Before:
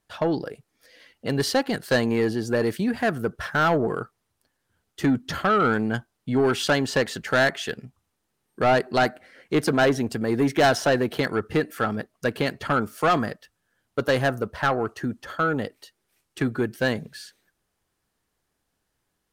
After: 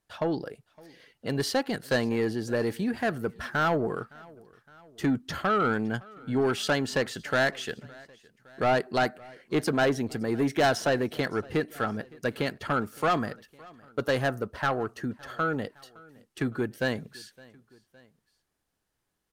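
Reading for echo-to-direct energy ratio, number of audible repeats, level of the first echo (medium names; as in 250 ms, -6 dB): -22.5 dB, 2, -24.0 dB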